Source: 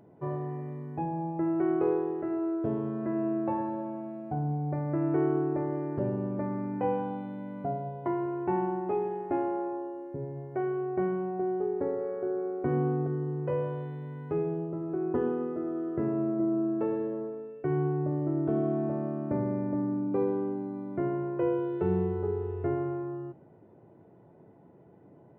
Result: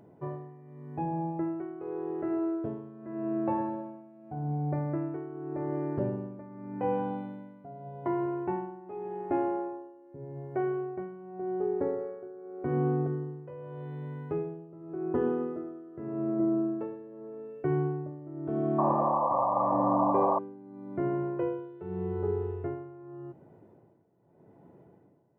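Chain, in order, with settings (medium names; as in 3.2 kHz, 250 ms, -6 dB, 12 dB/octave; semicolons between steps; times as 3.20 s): tremolo 0.85 Hz, depth 83%; painted sound noise, 18.78–20.39 s, 500–1200 Hz -28 dBFS; trim +1 dB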